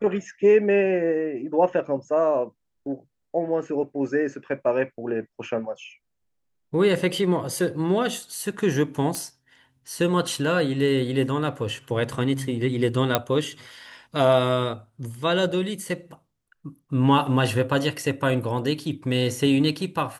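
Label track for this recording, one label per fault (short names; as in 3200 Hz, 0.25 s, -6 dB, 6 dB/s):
9.150000	9.150000	pop -14 dBFS
13.150000	13.150000	pop -4 dBFS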